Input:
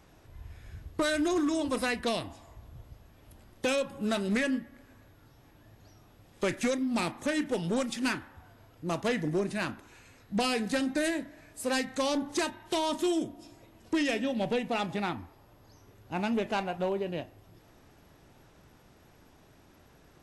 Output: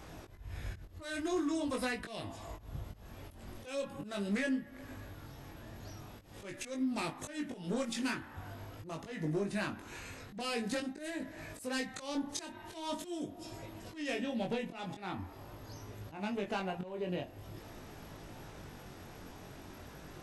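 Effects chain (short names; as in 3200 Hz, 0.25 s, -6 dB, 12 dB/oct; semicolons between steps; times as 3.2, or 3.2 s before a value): 10.8–11.2 expander -27 dBFS; compressor 4:1, threshold -44 dBFS, peak gain reduction 15.5 dB; auto swell 0.188 s; chorus 0.44 Hz, delay 19 ms, depth 3.1 ms; gain +11.5 dB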